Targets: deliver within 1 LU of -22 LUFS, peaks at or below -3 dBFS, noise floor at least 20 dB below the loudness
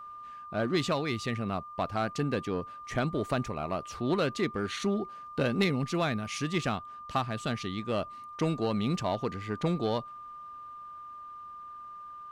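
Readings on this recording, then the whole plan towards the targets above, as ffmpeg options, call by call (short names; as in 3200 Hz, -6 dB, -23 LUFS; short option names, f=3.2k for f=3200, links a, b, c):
steady tone 1200 Hz; tone level -42 dBFS; loudness -31.5 LUFS; peak -15.5 dBFS; loudness target -22.0 LUFS
-> -af "bandreject=f=1.2k:w=30"
-af "volume=9.5dB"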